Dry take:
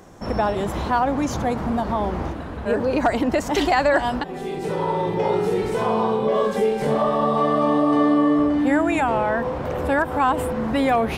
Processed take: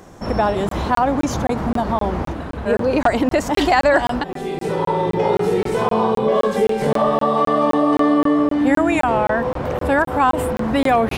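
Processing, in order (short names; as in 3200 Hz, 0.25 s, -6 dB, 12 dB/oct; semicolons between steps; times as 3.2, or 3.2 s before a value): 7.19–8.61 low shelf 120 Hz -11.5 dB; crackling interface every 0.26 s, samples 1024, zero, from 0.69; gain +3.5 dB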